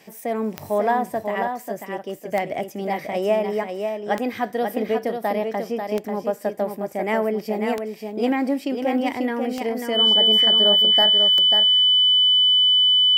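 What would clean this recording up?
de-click; band-stop 3 kHz, Q 30; inverse comb 541 ms -6 dB

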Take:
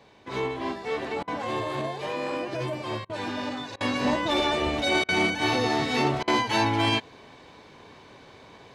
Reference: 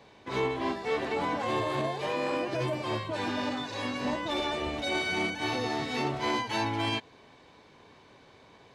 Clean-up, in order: interpolate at 1.23/3.05/3.76/5.04/6.23 s, 45 ms; trim 0 dB, from 3.76 s -6.5 dB

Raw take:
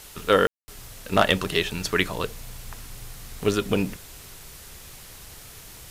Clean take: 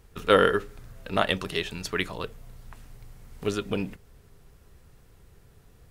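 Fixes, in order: clip repair -6 dBFS; room tone fill 0.47–0.68 s; noise reduction 10 dB, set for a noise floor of -44 dBFS; gain correction -5.5 dB, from 1.12 s

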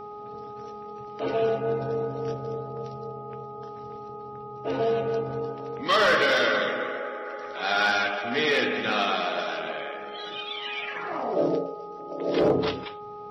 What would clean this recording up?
clip repair -14.5 dBFS; de-hum 416.3 Hz, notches 3

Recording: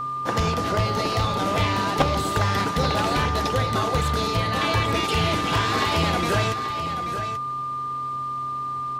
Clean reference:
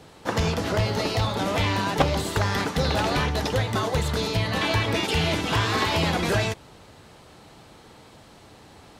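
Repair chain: de-hum 131.1 Hz, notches 3; band-stop 1.2 kHz, Q 30; inverse comb 834 ms -9.5 dB

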